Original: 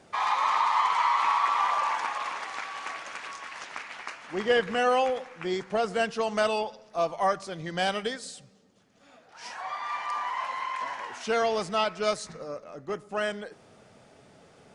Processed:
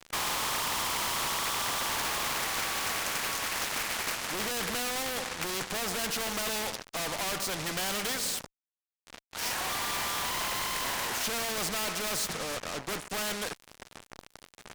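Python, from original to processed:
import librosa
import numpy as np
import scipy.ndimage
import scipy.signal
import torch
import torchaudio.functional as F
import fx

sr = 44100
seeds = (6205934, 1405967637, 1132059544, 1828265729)

y = fx.fuzz(x, sr, gain_db=41.0, gate_db=-48.0)
y = fx.spectral_comp(y, sr, ratio=2.0)
y = F.gain(torch.from_numpy(y), -8.5).numpy()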